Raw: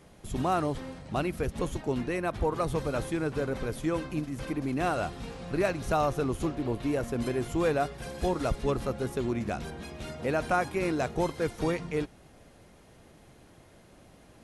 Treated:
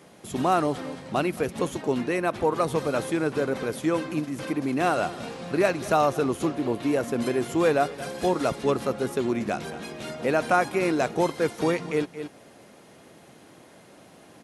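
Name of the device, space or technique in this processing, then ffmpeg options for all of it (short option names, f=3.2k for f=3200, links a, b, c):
ducked delay: -filter_complex "[0:a]asplit=3[a][b][c];[b]adelay=223,volume=-6.5dB[d];[c]apad=whole_len=646546[e];[d][e]sidechaincompress=threshold=-44dB:ratio=8:attack=8.9:release=188[f];[a][f]amix=inputs=2:normalize=0,highpass=180,volume=5.5dB"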